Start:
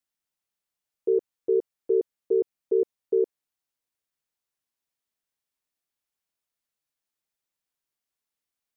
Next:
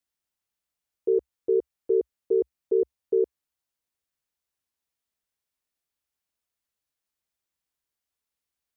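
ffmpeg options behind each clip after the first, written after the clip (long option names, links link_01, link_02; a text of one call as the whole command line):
ffmpeg -i in.wav -af "equalizer=frequency=64:width_type=o:width=0.69:gain=10" out.wav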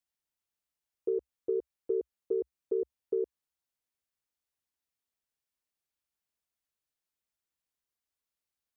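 ffmpeg -i in.wav -af "acompressor=threshold=-22dB:ratio=6,volume=-4.5dB" out.wav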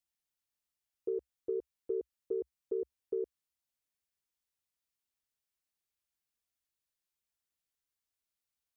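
ffmpeg -i in.wav -af "equalizer=frequency=540:width=0.33:gain=-4.5" out.wav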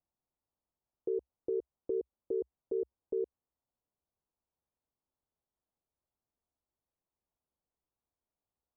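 ffmpeg -i in.wav -af "lowpass=frequency=1000:width=0.5412,lowpass=frequency=1000:width=1.3066,alimiter=level_in=9.5dB:limit=-24dB:level=0:latency=1:release=121,volume=-9.5dB,volume=7.5dB" out.wav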